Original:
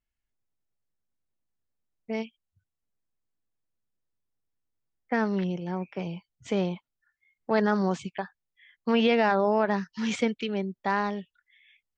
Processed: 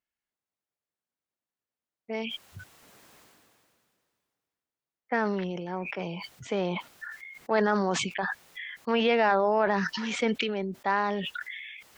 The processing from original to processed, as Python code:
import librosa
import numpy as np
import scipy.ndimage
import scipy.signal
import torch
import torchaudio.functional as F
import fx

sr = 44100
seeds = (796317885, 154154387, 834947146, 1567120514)

y = fx.highpass(x, sr, hz=510.0, slope=6)
y = fx.high_shelf(y, sr, hz=3400.0, db=-7.5)
y = fx.sustainer(y, sr, db_per_s=25.0)
y = y * librosa.db_to_amplitude(2.5)